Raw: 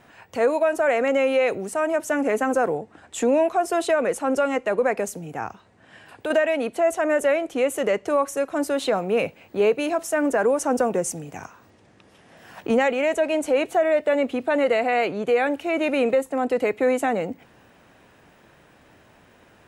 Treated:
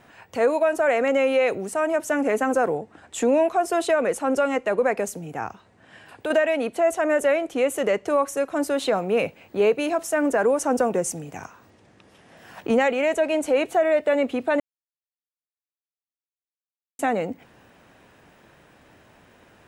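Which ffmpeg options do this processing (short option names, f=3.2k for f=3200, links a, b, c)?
-filter_complex "[0:a]asplit=3[a][b][c];[a]atrim=end=14.6,asetpts=PTS-STARTPTS,afade=t=out:st=14.596:d=0.004:c=hsin[d];[b]atrim=start=14.6:end=16.99,asetpts=PTS-STARTPTS,volume=0[e];[c]atrim=start=16.99,asetpts=PTS-STARTPTS,afade=t=in:d=0.004:c=hsin[f];[d][e][f]concat=n=3:v=0:a=1"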